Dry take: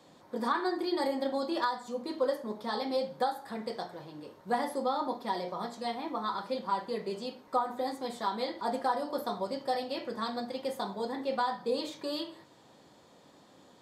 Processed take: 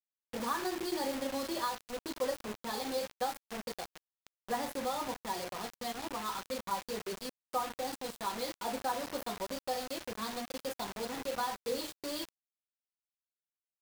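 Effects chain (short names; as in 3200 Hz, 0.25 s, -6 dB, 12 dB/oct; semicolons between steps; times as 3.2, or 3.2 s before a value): bin magnitudes rounded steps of 15 dB; dynamic EQ 6300 Hz, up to +4 dB, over -57 dBFS, Q 1.1; bit-crush 6-bit; gain -4.5 dB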